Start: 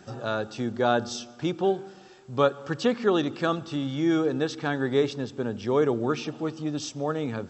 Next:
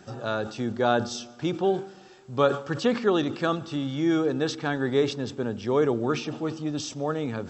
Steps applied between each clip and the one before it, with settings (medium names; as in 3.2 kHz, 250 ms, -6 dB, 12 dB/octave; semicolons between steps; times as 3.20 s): decay stretcher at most 130 dB/s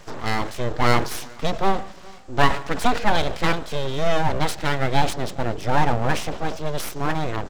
echo from a far wall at 71 m, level -24 dB; full-wave rectifier; trim +7 dB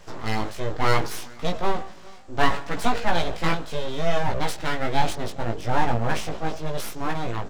chorus 0.69 Hz, delay 17 ms, depth 2 ms